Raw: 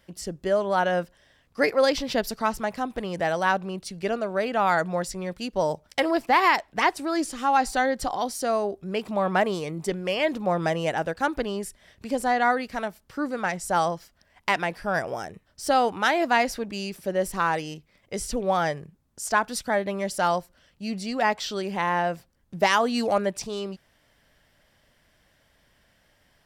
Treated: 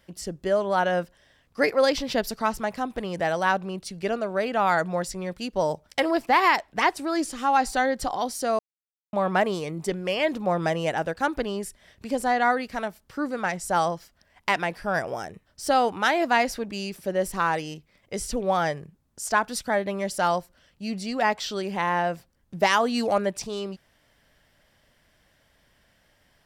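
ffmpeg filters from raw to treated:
ffmpeg -i in.wav -filter_complex "[0:a]asplit=3[link_01][link_02][link_03];[link_01]atrim=end=8.59,asetpts=PTS-STARTPTS,afade=type=out:start_time=8.586:duration=0.004:curve=hsin[link_04];[link_02]atrim=start=8.59:end=9.13,asetpts=PTS-STARTPTS,volume=0[link_05];[link_03]atrim=start=9.13,asetpts=PTS-STARTPTS,afade=type=in:duration=0.004:curve=hsin[link_06];[link_04][link_05][link_06]concat=n=3:v=0:a=1" out.wav

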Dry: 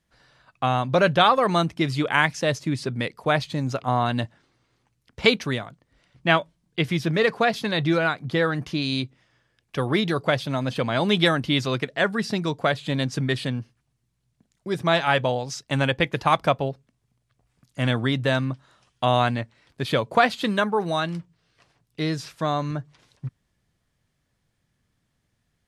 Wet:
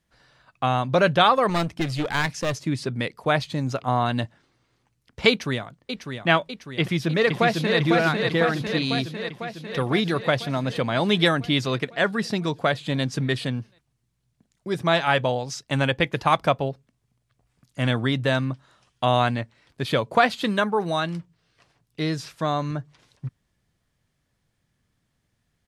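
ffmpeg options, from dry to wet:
ffmpeg -i in.wav -filter_complex "[0:a]asettb=1/sr,asplit=3[link_01][link_02][link_03];[link_01]atrim=end=1.494[link_04];[link_02]atrim=start=1.49:end=2.56,asetpts=PTS-STARTPTS,afade=type=in:duration=0.004:curve=qsin,afade=type=out:start_time=1.066:duration=0.004:curve=qsin,aeval=exprs='clip(val(0),-1,0.0501)':channel_layout=same[link_05];[link_03]atrim=start=2.556[link_06];[link_04][link_05]acrossfade=duration=0.004:curve1=hsin:curve2=qsin[link_07];[link_07][link_06]acrossfade=duration=0.004:curve1=qsin:curve2=hsin,asplit=2[link_08][link_09];[link_09]afade=type=in:start_time=5.29:duration=0.01,afade=type=out:start_time=6.27:duration=0.01,aecho=0:1:600|1200|1800|2400|3000|3600|4200|4800:0.446684|0.26801|0.160806|0.0964837|0.0578902|0.0347341|0.0208405|0.0125043[link_10];[link_08][link_10]amix=inputs=2:normalize=0,asplit=2[link_11][link_12];[link_12]afade=type=in:start_time=6.8:duration=0.01,afade=type=out:start_time=7.78:duration=0.01,aecho=0:1:500|1000|1500|2000|2500|3000|3500|4000|4500|5000|5500|6000:0.668344|0.467841|0.327489|0.229242|0.160469|0.112329|0.07863|0.055041|0.0385287|0.0269701|0.0188791|0.0132153[link_13];[link_11][link_13]amix=inputs=2:normalize=0" out.wav

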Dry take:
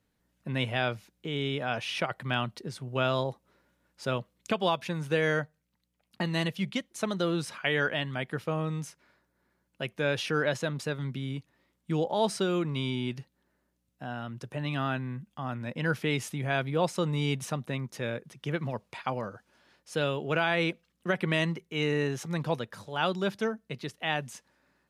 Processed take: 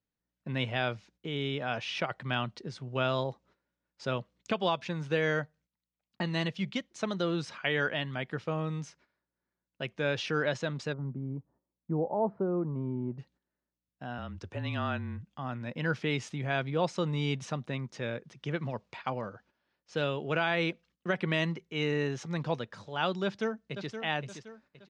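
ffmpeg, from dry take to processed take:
ffmpeg -i in.wav -filter_complex "[0:a]asplit=3[link_01][link_02][link_03];[link_01]afade=type=out:start_time=10.92:duration=0.02[link_04];[link_02]lowpass=frequency=1000:width=0.5412,lowpass=frequency=1000:width=1.3066,afade=type=in:start_time=10.92:duration=0.02,afade=type=out:start_time=13.18:duration=0.02[link_05];[link_03]afade=type=in:start_time=13.18:duration=0.02[link_06];[link_04][link_05][link_06]amix=inputs=3:normalize=0,asettb=1/sr,asplit=3[link_07][link_08][link_09];[link_07]atrim=end=14.184[link_10];[link_08]atrim=start=14.18:end=15.25,asetpts=PTS-STARTPTS,afade=type=in:duration=0.004:curve=qsin,afade=type=out:start_time=1.066:duration=0.004:curve=qsin,afreqshift=-30[link_11];[link_09]atrim=start=15.246[link_12];[link_10][link_11]acrossfade=duration=0.004:curve1=hsin:curve2=qsin[link_13];[link_13][link_12]acrossfade=duration=0.004:curve1=qsin:curve2=hsin,asettb=1/sr,asplit=3[link_14][link_15][link_16];[link_14]atrim=end=18.954[link_17];[link_15]atrim=start=18.95:end=20.02,asetpts=PTS-STARTPTS,afade=type=in:duration=0.004:curve=qsin,afade=type=out:start_time=1.066:duration=0.004:curve=qsin,adynamicsmooth=sensitivity=7:basefreq=6200[link_18];[link_16]atrim=start=20.016[link_19];[link_17][link_18]acrossfade=duration=0.004:curve1=hsin:curve2=qsin[link_20];[link_20][link_19]acrossfade=duration=0.004:curve1=qsin:curve2=hsin,asplit=2[link_21][link_22];[link_22]afade=type=in:start_time=23.24:duration=0.01,afade=type=out:start_time=23.91:duration=0.01,aecho=0:1:520|1040|1560|2080:0.354813|0.141925|0.0567701|0.0227081[link_23];[link_21][link_23]amix=inputs=2:normalize=0,lowpass=frequency=6600:width=0.5412,lowpass=frequency=6600:width=1.3066,agate=range=-13dB:threshold=-59dB:ratio=16:detection=peak,volume=-2dB" out.wav

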